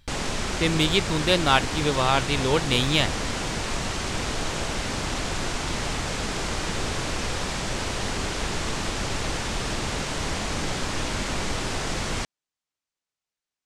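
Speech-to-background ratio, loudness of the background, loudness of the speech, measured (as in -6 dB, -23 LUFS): 5.5 dB, -28.5 LUFS, -23.0 LUFS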